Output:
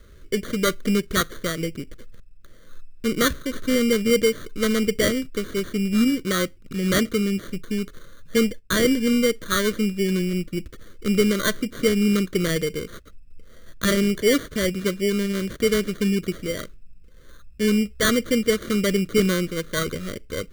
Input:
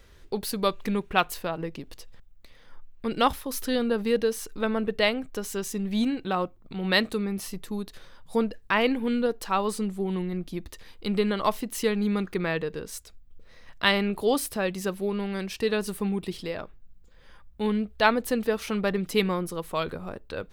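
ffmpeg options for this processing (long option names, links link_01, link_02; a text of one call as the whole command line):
ffmpeg -i in.wav -filter_complex "[0:a]asettb=1/sr,asplit=3[link_01][link_02][link_03];[link_01]atrim=end=8.364[link_04];[link_02]atrim=start=8.36:end=10.69,asetpts=PTS-STARTPTS,afade=type=in:duration=0.004:curve=qsin,afade=type=out:start_time=2.326:duration=0.004:curve=qsin,agate=range=-9dB:threshold=-37dB:ratio=16:detection=peak[link_05];[link_03]atrim=start=10.686[link_06];[link_04][link_05]acrossfade=duration=0.004:curve1=hsin:curve2=qsin[link_07];[link_07][link_06]acrossfade=duration=0.004:curve1=qsin:curve2=hsin,lowpass=frequency=3300:poles=1,acrusher=samples=17:mix=1:aa=0.000001,asoftclip=type=hard:threshold=-17dB,asuperstop=centerf=830:order=4:qfactor=1.2,volume=6.5dB" out.wav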